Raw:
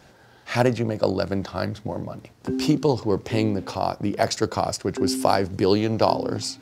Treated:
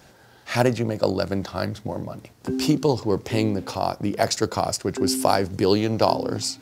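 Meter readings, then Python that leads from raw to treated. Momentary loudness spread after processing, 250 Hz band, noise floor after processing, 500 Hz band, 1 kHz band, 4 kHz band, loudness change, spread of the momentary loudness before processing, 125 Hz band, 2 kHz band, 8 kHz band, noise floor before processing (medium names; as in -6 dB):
8 LU, 0.0 dB, -52 dBFS, 0.0 dB, 0.0 dB, +2.0 dB, +0.5 dB, 8 LU, 0.0 dB, +0.5 dB, +3.5 dB, -53 dBFS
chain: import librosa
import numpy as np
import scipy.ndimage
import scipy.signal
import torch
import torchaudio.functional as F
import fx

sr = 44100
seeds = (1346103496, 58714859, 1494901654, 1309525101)

y = fx.high_shelf(x, sr, hz=7600.0, db=8.0)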